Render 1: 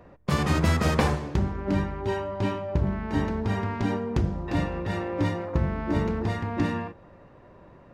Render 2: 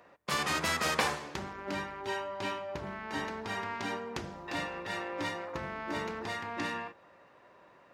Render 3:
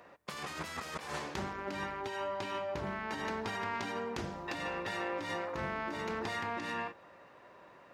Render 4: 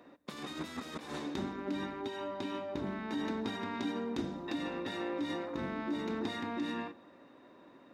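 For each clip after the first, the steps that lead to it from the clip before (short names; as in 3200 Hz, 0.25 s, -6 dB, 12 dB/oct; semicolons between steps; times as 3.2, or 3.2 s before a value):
HPF 1500 Hz 6 dB/oct; gain +2 dB
negative-ratio compressor -38 dBFS, ratio -1
small resonant body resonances 270/3700 Hz, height 18 dB, ringing for 40 ms; reverb RT60 0.30 s, pre-delay 0.113 s, DRR 25 dB; gain -5.5 dB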